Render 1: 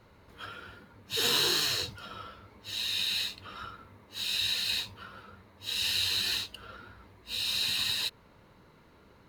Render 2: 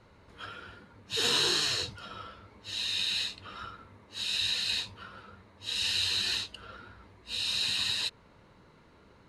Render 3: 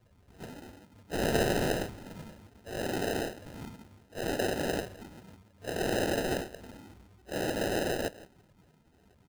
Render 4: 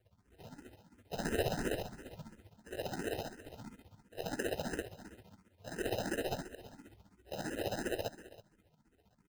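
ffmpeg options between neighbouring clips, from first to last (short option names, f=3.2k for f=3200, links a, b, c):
-af "lowpass=f=9.8k:w=0.5412,lowpass=f=9.8k:w=1.3066"
-filter_complex "[0:a]asplit=4[a][b][c][d];[b]adelay=170,afreqshift=130,volume=-18dB[e];[c]adelay=340,afreqshift=260,volume=-27.4dB[f];[d]adelay=510,afreqshift=390,volume=-36.7dB[g];[a][e][f][g]amix=inputs=4:normalize=0,afftdn=nr=16:nf=-51,acrusher=samples=39:mix=1:aa=0.000001"
-filter_complex "[0:a]aecho=1:1:319:0.15,tremolo=f=15:d=0.7,asplit=2[a][b];[b]afreqshift=2.9[c];[a][c]amix=inputs=2:normalize=1,volume=-1dB"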